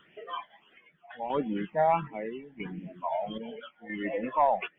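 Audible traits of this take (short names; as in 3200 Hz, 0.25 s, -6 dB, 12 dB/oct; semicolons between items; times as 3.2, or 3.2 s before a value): phasing stages 8, 1.5 Hz, lowest notch 340–1200 Hz; chopped level 0.77 Hz, depth 60%, duty 60%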